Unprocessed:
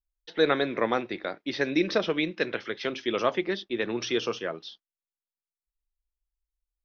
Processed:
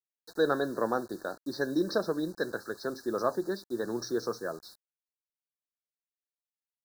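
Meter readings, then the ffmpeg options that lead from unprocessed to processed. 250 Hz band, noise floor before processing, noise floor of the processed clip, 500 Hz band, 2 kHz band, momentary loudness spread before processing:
-3.0 dB, under -85 dBFS, under -85 dBFS, -3.0 dB, -7.5 dB, 9 LU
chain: -af "acontrast=55,acrusher=bits=6:mix=0:aa=0.000001,asuperstop=centerf=2600:order=20:qfactor=1.2,volume=-9dB"

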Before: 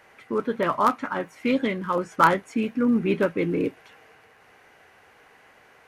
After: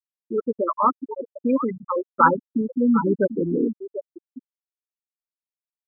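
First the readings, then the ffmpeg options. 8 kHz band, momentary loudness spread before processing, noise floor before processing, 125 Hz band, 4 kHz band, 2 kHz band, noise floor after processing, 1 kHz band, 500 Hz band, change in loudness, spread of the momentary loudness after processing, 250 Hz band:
n/a, 9 LU, -56 dBFS, -0.5 dB, under -40 dB, -2.0 dB, under -85 dBFS, +1.5 dB, +1.5 dB, +1.5 dB, 15 LU, +2.0 dB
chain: -filter_complex "[0:a]asplit=2[a][b];[b]adelay=742,lowpass=f=3.5k:p=1,volume=-8dB,asplit=2[c][d];[d]adelay=742,lowpass=f=3.5k:p=1,volume=0.36,asplit=2[e][f];[f]adelay=742,lowpass=f=3.5k:p=1,volume=0.36,asplit=2[g][h];[h]adelay=742,lowpass=f=3.5k:p=1,volume=0.36[i];[c][e][g][i]amix=inputs=4:normalize=0[j];[a][j]amix=inputs=2:normalize=0,afftfilt=real='re*gte(hypot(re,im),0.316)':imag='im*gte(hypot(re,im),0.316)':win_size=1024:overlap=0.75,volume=2.5dB"

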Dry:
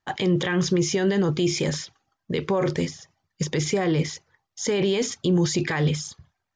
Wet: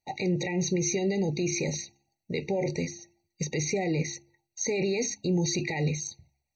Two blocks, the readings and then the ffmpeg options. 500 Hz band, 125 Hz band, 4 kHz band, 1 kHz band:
-5.5 dB, -5.5 dB, -7.0 dB, -6.5 dB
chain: -af "highshelf=f=2.8k:g=10,bandreject=f=68.98:t=h:w=4,bandreject=f=137.96:t=h:w=4,bandreject=f=206.94:t=h:w=4,bandreject=f=275.92:t=h:w=4,bandreject=f=344.9:t=h:w=4,afftfilt=real='re*eq(mod(floor(b*sr/1024/940),2),0)':imag='im*eq(mod(floor(b*sr/1024/940),2),0)':win_size=1024:overlap=0.75,volume=-5.5dB"

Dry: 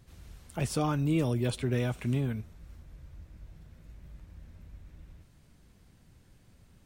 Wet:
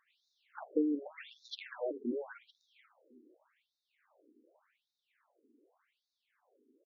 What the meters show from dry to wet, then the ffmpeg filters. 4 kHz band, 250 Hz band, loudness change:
-7.0 dB, -6.0 dB, -7.5 dB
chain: -filter_complex "[0:a]adynamicsmooth=sensitivity=5:basefreq=2.2k,asplit=4[a][b][c][d];[b]adelay=480,afreqshift=-86,volume=-12dB[e];[c]adelay=960,afreqshift=-172,volume=-21.4dB[f];[d]adelay=1440,afreqshift=-258,volume=-30.7dB[g];[a][e][f][g]amix=inputs=4:normalize=0,afftfilt=real='re*between(b*sr/1024,320*pow(5100/320,0.5+0.5*sin(2*PI*0.86*pts/sr))/1.41,320*pow(5100/320,0.5+0.5*sin(2*PI*0.86*pts/sr))*1.41)':imag='im*between(b*sr/1024,320*pow(5100/320,0.5+0.5*sin(2*PI*0.86*pts/sr))/1.41,320*pow(5100/320,0.5+0.5*sin(2*PI*0.86*pts/sr))*1.41)':win_size=1024:overlap=0.75,volume=3dB"

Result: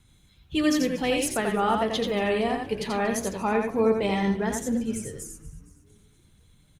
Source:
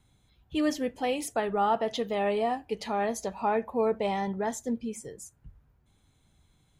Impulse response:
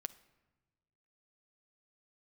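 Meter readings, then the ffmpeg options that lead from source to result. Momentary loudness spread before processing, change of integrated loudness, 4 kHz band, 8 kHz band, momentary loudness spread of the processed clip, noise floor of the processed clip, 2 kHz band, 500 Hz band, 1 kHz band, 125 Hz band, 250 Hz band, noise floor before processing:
8 LU, +4.0 dB, +7.0 dB, +7.0 dB, 8 LU, -60 dBFS, +7.0 dB, +3.0 dB, +0.5 dB, +8.5 dB, +6.5 dB, -67 dBFS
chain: -filter_complex "[0:a]equalizer=f=730:w=1.2:g=-9,bandreject=f=60:t=h:w=6,bandreject=f=120:t=h:w=6,bandreject=f=180:t=h:w=6,bandreject=f=240:t=h:w=6,bandreject=f=300:t=h:w=6,bandreject=f=360:t=h:w=6,bandreject=f=420:t=h:w=6,bandreject=f=480:t=h:w=6,asplit=6[a][b][c][d][e][f];[b]adelay=233,afreqshift=-130,volume=-18.5dB[g];[c]adelay=466,afreqshift=-260,volume=-23.5dB[h];[d]adelay=699,afreqshift=-390,volume=-28.6dB[i];[e]adelay=932,afreqshift=-520,volume=-33.6dB[j];[f]adelay=1165,afreqshift=-650,volume=-38.6dB[k];[a][g][h][i][j][k]amix=inputs=6:normalize=0,asplit=2[l][m];[1:a]atrim=start_sample=2205,asetrate=52920,aresample=44100,adelay=86[n];[m][n]afir=irnorm=-1:irlink=0,volume=0.5dB[o];[l][o]amix=inputs=2:normalize=0,volume=7dB" -ar 48000 -c:a libopus -b:a 48k

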